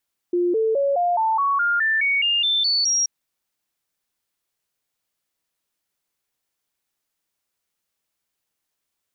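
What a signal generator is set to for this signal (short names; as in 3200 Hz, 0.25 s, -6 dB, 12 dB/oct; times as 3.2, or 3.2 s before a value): stepped sine 352 Hz up, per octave 3, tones 13, 0.21 s, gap 0.00 s -17 dBFS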